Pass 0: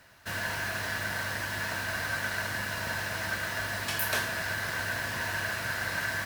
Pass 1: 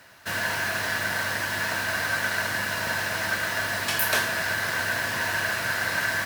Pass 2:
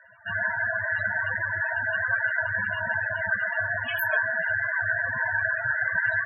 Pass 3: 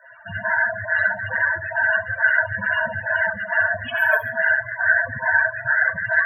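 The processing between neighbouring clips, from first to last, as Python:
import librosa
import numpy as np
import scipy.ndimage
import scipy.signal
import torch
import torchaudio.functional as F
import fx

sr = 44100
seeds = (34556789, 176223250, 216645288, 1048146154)

y1 = fx.highpass(x, sr, hz=160.0, slope=6)
y1 = F.gain(torch.from_numpy(y1), 6.0).numpy()
y2 = fx.spec_topn(y1, sr, count=16)
y2 = F.gain(torch.from_numpy(y2), 3.0).numpy()
y3 = fx.echo_feedback(y2, sr, ms=66, feedback_pct=38, wet_db=-9.0)
y3 = fx.stagger_phaser(y3, sr, hz=2.3)
y3 = F.gain(torch.from_numpy(y3), 8.5).numpy()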